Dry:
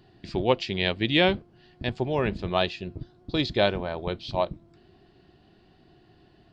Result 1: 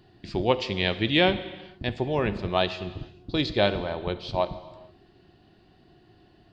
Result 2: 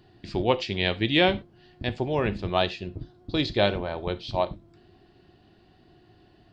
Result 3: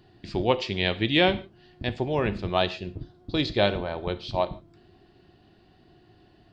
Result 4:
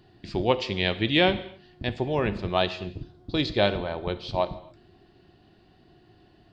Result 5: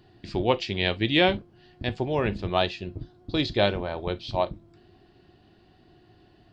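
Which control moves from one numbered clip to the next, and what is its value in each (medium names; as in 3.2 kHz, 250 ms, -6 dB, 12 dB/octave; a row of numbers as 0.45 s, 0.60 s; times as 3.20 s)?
gated-style reverb, gate: 490 ms, 120 ms, 180 ms, 300 ms, 80 ms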